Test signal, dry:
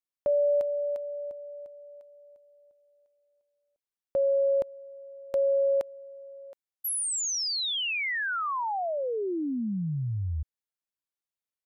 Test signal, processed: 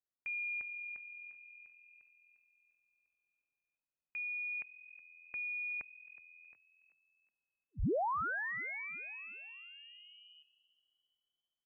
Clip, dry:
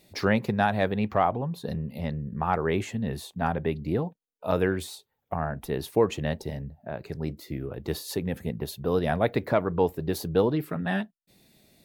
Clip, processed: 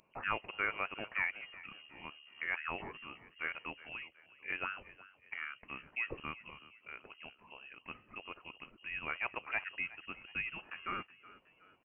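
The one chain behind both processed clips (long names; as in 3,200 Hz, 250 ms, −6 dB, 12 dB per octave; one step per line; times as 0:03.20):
first difference
voice inversion scrambler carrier 3,000 Hz
echo with shifted repeats 369 ms, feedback 46%, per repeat +42 Hz, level −18.5 dB
level +6.5 dB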